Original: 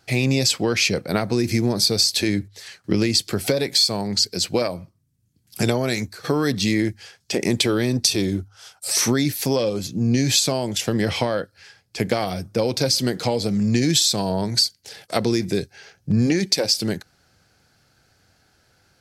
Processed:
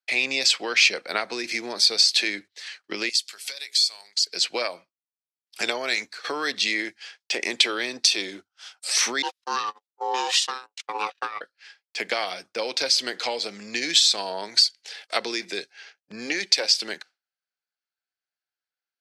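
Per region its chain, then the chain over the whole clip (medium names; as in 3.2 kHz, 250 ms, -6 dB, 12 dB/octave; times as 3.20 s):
3.09–4.27 s: pre-emphasis filter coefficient 0.97 + hum notches 60/120/180/240/300/360/420/480 Hz
9.22–11.41 s: gate -22 dBFS, range -49 dB + ring modulator 640 Hz
whole clip: frequency weighting ITU-R 468; expander -33 dBFS; three-band isolator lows -21 dB, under 230 Hz, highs -16 dB, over 3.5 kHz; trim -1.5 dB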